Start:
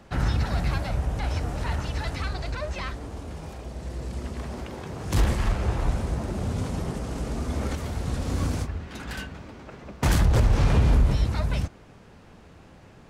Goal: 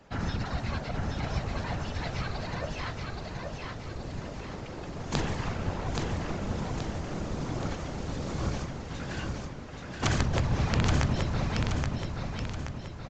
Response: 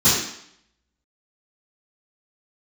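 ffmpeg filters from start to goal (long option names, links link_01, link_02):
-filter_complex "[0:a]lowshelf=frequency=170:gain=-4.5,afftfilt=real='hypot(re,im)*cos(2*PI*random(0))':imag='hypot(re,im)*sin(2*PI*random(1))':win_size=512:overlap=0.75,aeval=exprs='(mod(8.41*val(0)+1,2)-1)/8.41':channel_layout=same,asplit=2[link_01][link_02];[link_02]aecho=0:1:826|1652|2478|3304|4130|4956:0.668|0.321|0.154|0.0739|0.0355|0.017[link_03];[link_01][link_03]amix=inputs=2:normalize=0,aresample=16000,aresample=44100,volume=2dB"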